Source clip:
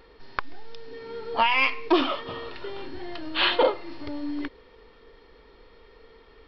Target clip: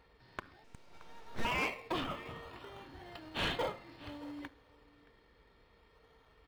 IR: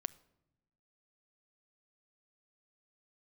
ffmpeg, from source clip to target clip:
-filter_complex "[0:a]highpass=63,equalizer=frequency=360:width=0.73:gain=-14.5[link_01];[1:a]atrim=start_sample=2205,atrim=end_sample=6615[link_02];[link_01][link_02]afir=irnorm=-1:irlink=0,asettb=1/sr,asplit=3[link_03][link_04][link_05];[link_03]atrim=end=0.644[link_06];[link_04]atrim=start=0.64:end=1.45,asetpts=PTS-STARTPTS,afade=type=in:duration=0.004:curve=qsin,afade=type=out:start_time=0.806:duration=0.004:curve=qsin,aeval=exprs='abs(val(0))':channel_layout=same[link_07];[link_05]atrim=start=1.446[link_08];[link_06][link_07]acrossfade=duration=0.004:curve1=hsin:curve2=qsin[link_09];[link_09][link_08]acrossfade=duration=0.004:curve1=qsin:curve2=hsin,asettb=1/sr,asplit=3[link_10][link_11][link_12];[link_10]atrim=end=2.044[link_13];[link_11]atrim=start=2.04:end=3.05,asetpts=PTS-STARTPTS,afade=type=in:duration=0.004:curve=qsin,afade=type=out:start_time=1.006:duration=0.004:curve=qsin,acrossover=split=2900[link_14][link_15];[link_15]acompressor=threshold=-54dB:ratio=4:attack=1:release=60[link_16];[link_14][link_16]amix=inputs=2:normalize=0[link_17];[link_12]atrim=start=3.046[link_18];[link_13][link_17]acrossfade=duration=0.004:curve1=hsin:curve2=qsin[link_19];[link_19][link_18]acrossfade=duration=0.004:curve1=qsin:curve2=hsin,aecho=1:1:623:0.075,asplit=2[link_20][link_21];[link_21]acrusher=samples=24:mix=1:aa=0.000001:lfo=1:lforange=14.4:lforate=0.61,volume=-4.5dB[link_22];[link_20][link_22]amix=inputs=2:normalize=0,asoftclip=type=tanh:threshold=-20dB,highshelf=frequency=2700:gain=-8,volume=-5dB"

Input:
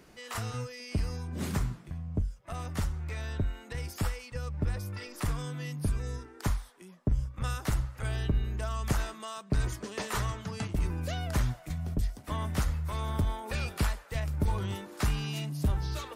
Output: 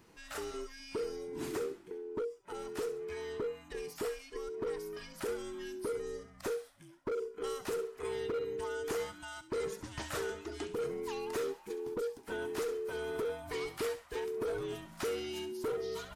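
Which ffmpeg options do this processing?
ffmpeg -i in.wav -filter_complex "[0:a]afftfilt=real='real(if(between(b,1,1008),(2*floor((b-1)/24)+1)*24-b,b),0)':imag='imag(if(between(b,1,1008),(2*floor((b-1)/24)+1)*24-b,b),0)*if(between(b,1,1008),-1,1)':win_size=2048:overlap=0.75,acrossover=split=1600[link_01][link_02];[link_01]asoftclip=type=hard:threshold=-26.5dB[link_03];[link_02]aecho=1:1:67|134|201:0.266|0.0825|0.0256[link_04];[link_03][link_04]amix=inputs=2:normalize=0,volume=-5.5dB" out.wav

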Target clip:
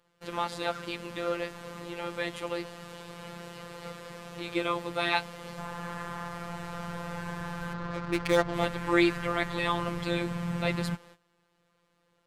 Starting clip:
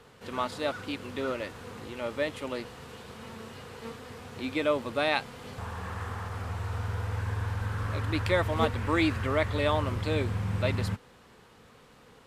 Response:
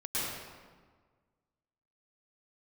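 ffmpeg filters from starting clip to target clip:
-filter_complex "[0:a]asettb=1/sr,asplit=3[link_01][link_02][link_03];[link_01]atrim=end=7.734[link_04];[link_02]atrim=start=7.73:end=8.54,asetpts=PTS-STARTPTS,afade=type=in:duration=0.004:curve=qsin,afade=type=out:start_time=0.806:duration=0.004:curve=qsin,adynamicsmooth=sensitivity=6:basefreq=560[link_05];[link_03]atrim=start=8.536[link_06];[link_04][link_05]acrossfade=duration=0.004:curve1=hsin:curve2=qsin[link_07];[link_07][link_06]acrossfade=duration=0.004:curve1=qsin:curve2=hsin,agate=range=-17dB:threshold=-51dB:ratio=16:detection=peak,afftfilt=real='hypot(re,im)*cos(PI*b)':imag='0':win_size=1024:overlap=0.75,volume=4.5dB"

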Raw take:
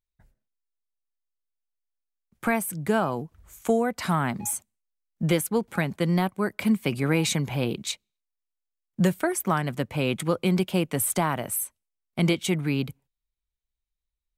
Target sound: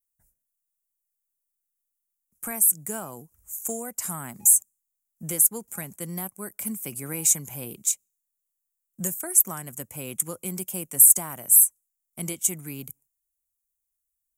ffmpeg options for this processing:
ffmpeg -i in.wav -af "adynamicequalizer=threshold=0.002:dfrequency=7100:dqfactor=7.6:tfrequency=7100:tqfactor=7.6:attack=5:release=100:ratio=0.375:range=3.5:mode=boostabove:tftype=bell,aexciter=amount=14.5:drive=6.6:freq=6200,volume=-12dB" out.wav

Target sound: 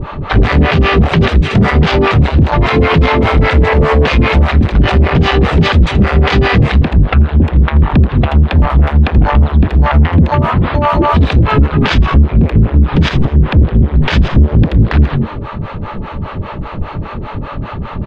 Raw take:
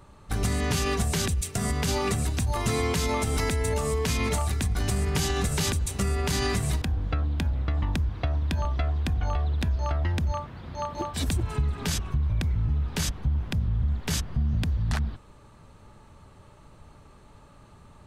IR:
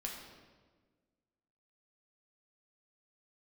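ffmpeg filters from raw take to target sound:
-filter_complex "[0:a]asoftclip=type=hard:threshold=-28.5dB,asplit=2[link_01][link_02];[link_02]asplit=4[link_03][link_04][link_05][link_06];[link_03]adelay=82,afreqshift=80,volume=-9.5dB[link_07];[link_04]adelay=164,afreqshift=160,volume=-19.4dB[link_08];[link_05]adelay=246,afreqshift=240,volume=-29.3dB[link_09];[link_06]adelay=328,afreqshift=320,volume=-39.2dB[link_10];[link_07][link_08][link_09][link_10]amix=inputs=4:normalize=0[link_11];[link_01][link_11]amix=inputs=2:normalize=0,asoftclip=type=tanh:threshold=-26dB,lowpass=frequency=3200:width=0.5412,lowpass=frequency=3200:width=1.3066,asplit=2[link_12][link_13];[link_13]adelay=80,highpass=300,lowpass=3400,asoftclip=type=hard:threshold=-34.5dB,volume=-15dB[link_14];[link_12][link_14]amix=inputs=2:normalize=0,acompressor=threshold=-35dB:ratio=6,acrossover=split=470[link_15][link_16];[link_15]aeval=exprs='val(0)*(1-1/2+1/2*cos(2*PI*5*n/s))':channel_layout=same[link_17];[link_16]aeval=exprs='val(0)*(1-1/2-1/2*cos(2*PI*5*n/s))':channel_layout=same[link_18];[link_17][link_18]amix=inputs=2:normalize=0,alimiter=level_in=35dB:limit=-1dB:release=50:level=0:latency=1,volume=-1dB"

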